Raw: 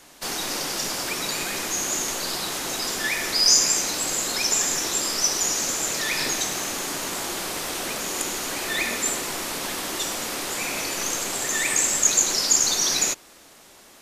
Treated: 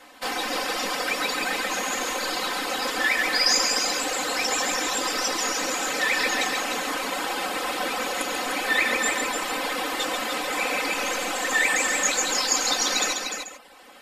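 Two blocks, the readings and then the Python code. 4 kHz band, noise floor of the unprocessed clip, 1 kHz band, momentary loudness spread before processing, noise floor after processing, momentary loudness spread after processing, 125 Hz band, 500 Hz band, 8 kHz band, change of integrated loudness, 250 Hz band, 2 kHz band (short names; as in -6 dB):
-1.0 dB, -50 dBFS, +5.5 dB, 10 LU, -42 dBFS, 6 LU, n/a, +3.5 dB, -6.0 dB, -1.5 dB, +1.0 dB, +5.0 dB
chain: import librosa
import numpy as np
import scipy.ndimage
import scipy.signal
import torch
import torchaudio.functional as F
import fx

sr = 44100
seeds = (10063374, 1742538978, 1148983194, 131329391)

p1 = fx.notch(x, sr, hz=6100.0, q=11.0)
p2 = p1 + 0.89 * np.pad(p1, (int(3.9 * sr / 1000.0), 0))[:len(p1)]
p3 = p2 + 10.0 ** (-4.5 / 20.0) * np.pad(p2, (int(138 * sr / 1000.0), 0))[:len(p2)]
p4 = fx.dereverb_blind(p3, sr, rt60_s=0.77)
p5 = fx.bass_treble(p4, sr, bass_db=-13, treble_db=-12)
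p6 = p5 + fx.echo_single(p5, sr, ms=300, db=-6.5, dry=0)
y = F.gain(torch.from_numpy(p6), 3.0).numpy()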